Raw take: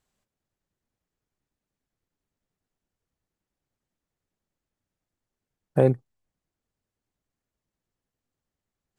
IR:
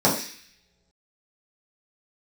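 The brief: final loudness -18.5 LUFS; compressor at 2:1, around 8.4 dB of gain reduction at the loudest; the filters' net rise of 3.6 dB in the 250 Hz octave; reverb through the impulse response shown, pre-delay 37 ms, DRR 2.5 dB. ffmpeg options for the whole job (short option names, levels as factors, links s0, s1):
-filter_complex "[0:a]equalizer=f=250:t=o:g=4.5,acompressor=threshold=0.0447:ratio=2,asplit=2[s0][s1];[1:a]atrim=start_sample=2205,adelay=37[s2];[s1][s2]afir=irnorm=-1:irlink=0,volume=0.0891[s3];[s0][s3]amix=inputs=2:normalize=0,volume=2.11"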